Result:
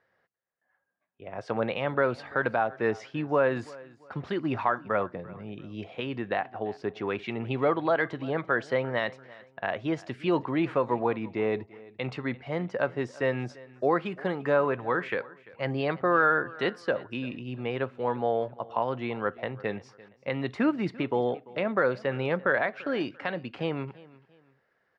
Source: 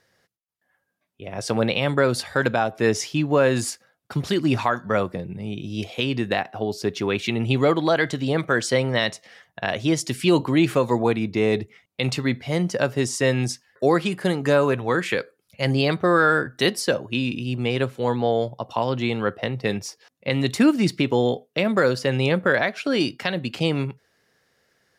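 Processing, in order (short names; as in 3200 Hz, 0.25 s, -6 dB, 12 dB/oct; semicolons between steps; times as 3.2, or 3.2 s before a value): LPF 1500 Hz 12 dB/oct; low shelf 470 Hz -12 dB; feedback echo 0.342 s, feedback 33%, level -21 dB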